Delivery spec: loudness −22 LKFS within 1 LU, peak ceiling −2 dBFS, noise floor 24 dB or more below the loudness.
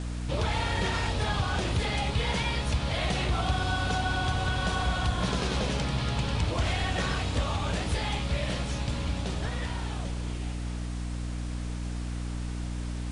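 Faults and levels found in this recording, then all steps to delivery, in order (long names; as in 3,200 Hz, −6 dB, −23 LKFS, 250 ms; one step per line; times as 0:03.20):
mains hum 60 Hz; hum harmonics up to 300 Hz; level of the hum −31 dBFS; background noise floor −34 dBFS; target noise floor −54 dBFS; integrated loudness −30.0 LKFS; sample peak −15.5 dBFS; target loudness −22.0 LKFS
→ mains-hum notches 60/120/180/240/300 Hz
noise reduction from a noise print 20 dB
level +8 dB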